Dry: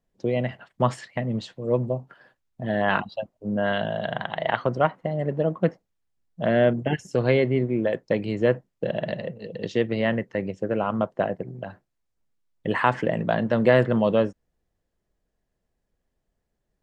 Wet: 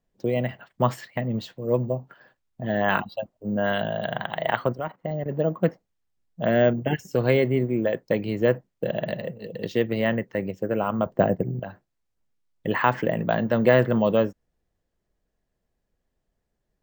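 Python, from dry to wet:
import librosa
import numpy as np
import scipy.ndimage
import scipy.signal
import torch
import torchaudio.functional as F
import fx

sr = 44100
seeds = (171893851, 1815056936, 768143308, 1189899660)

y = fx.level_steps(x, sr, step_db=14, at=(4.72, 5.29), fade=0.02)
y = fx.low_shelf(y, sr, hz=470.0, db=10.0, at=(11.06, 11.6))
y = np.repeat(scipy.signal.resample_poly(y, 1, 2), 2)[:len(y)]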